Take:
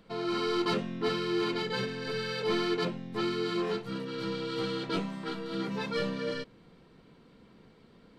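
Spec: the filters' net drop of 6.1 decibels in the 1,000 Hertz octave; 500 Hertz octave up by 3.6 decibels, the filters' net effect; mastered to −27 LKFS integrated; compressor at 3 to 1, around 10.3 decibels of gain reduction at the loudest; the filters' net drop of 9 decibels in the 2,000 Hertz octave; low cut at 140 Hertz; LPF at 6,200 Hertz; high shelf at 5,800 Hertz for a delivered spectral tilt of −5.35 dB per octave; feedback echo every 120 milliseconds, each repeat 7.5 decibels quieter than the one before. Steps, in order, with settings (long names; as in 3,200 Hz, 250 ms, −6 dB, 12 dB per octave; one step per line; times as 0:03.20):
high-pass filter 140 Hz
low-pass filter 6,200 Hz
parametric band 500 Hz +6 dB
parametric band 1,000 Hz −6 dB
parametric band 2,000 Hz −9 dB
high-shelf EQ 5,800 Hz −7.5 dB
downward compressor 3 to 1, threshold −38 dBFS
repeating echo 120 ms, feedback 42%, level −7.5 dB
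level +11.5 dB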